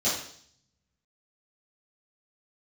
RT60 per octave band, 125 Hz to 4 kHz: 1.4, 0.70, 0.60, 0.55, 0.60, 0.70 seconds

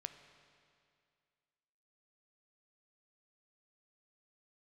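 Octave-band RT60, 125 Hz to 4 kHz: 2.3, 2.3, 2.3, 2.3, 2.2, 2.1 seconds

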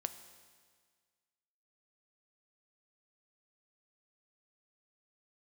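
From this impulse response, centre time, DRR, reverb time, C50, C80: 14 ms, 9.5 dB, 1.7 s, 11.5 dB, 12.5 dB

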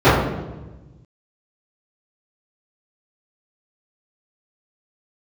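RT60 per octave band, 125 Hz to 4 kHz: 1.9, 1.5, 1.2, 1.0, 0.85, 0.80 seconds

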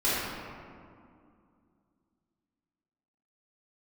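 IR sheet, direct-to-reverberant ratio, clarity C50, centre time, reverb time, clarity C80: −11.5 dB, −3.5 dB, 138 ms, 2.3 s, −1.0 dB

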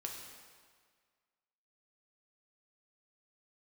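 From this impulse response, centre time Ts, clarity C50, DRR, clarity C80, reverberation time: 62 ms, 3.5 dB, 0.0 dB, 5.0 dB, 1.7 s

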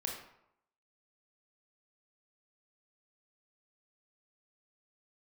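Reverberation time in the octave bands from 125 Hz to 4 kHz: 0.75, 0.70, 0.75, 0.80, 0.65, 0.50 seconds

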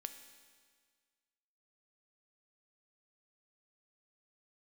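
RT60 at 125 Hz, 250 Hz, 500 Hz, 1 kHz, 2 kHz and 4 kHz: 1.8, 1.7, 1.7, 1.7, 1.7, 1.7 seconds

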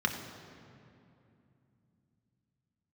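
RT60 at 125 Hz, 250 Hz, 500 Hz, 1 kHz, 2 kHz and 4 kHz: 4.5, 4.2, 2.8, 2.5, 2.2, 1.7 seconds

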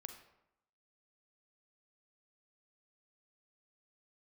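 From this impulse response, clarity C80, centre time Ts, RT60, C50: 10.5 dB, 18 ms, 0.85 s, 7.5 dB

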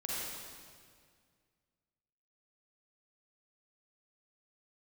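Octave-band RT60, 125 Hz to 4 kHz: 2.5, 2.3, 2.1, 1.9, 1.8, 1.7 seconds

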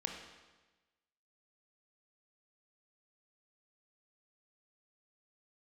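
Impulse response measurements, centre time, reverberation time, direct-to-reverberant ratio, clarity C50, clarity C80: 41 ms, 1.2 s, 2.0 dB, 4.5 dB, 6.5 dB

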